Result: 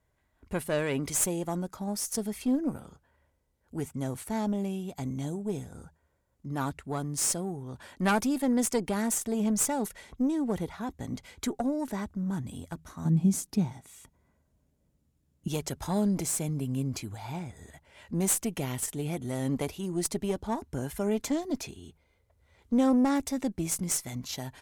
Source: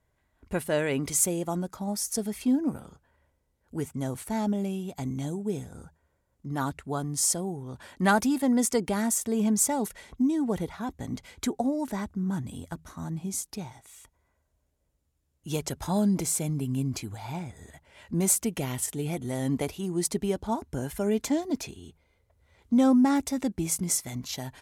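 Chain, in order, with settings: single-diode clipper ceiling -21.5 dBFS; 13.05–15.48 s: peaking EQ 190 Hz +13 dB 1.7 oct; trim -1 dB

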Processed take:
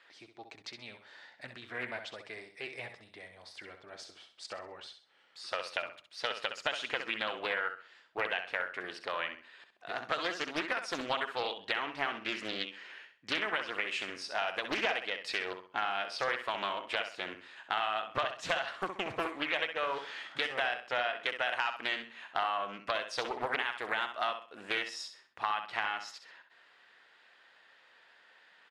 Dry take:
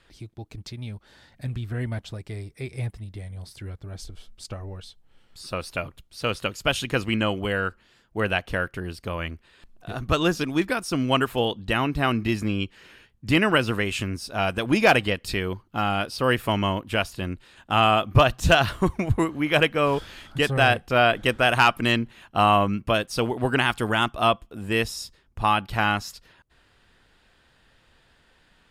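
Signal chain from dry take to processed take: high-pass 610 Hz 12 dB/octave; peaking EQ 1.9 kHz +5 dB 0.41 oct; compression 6:1, threshold -29 dBFS, peak gain reduction 16 dB; distance through air 100 m; on a send: feedback delay 65 ms, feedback 32%, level -8.5 dB; on the sum: loudspeaker Doppler distortion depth 0.49 ms

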